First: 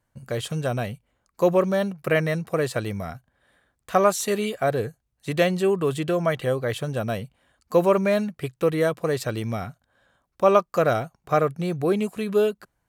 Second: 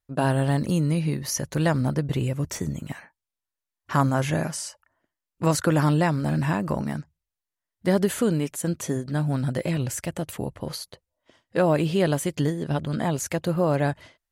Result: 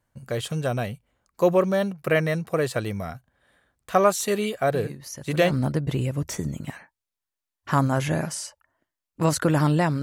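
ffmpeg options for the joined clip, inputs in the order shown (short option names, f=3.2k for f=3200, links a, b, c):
-filter_complex "[1:a]asplit=2[a][b];[0:a]apad=whole_dur=10.02,atrim=end=10.02,atrim=end=5.512[c];[b]atrim=start=1.728:end=6.24[d];[a]atrim=start=0.96:end=1.73,asetpts=PTS-STARTPTS,volume=-10dB,afade=t=in:d=0.004:c=hsin,afade=t=out:st=0.766:d=0.004:c=hsin,adelay=4740[e];[c][d]acrossfade=d=0.004:c1=hsin:c2=hsin[f];[f][e]amix=inputs=2:normalize=0"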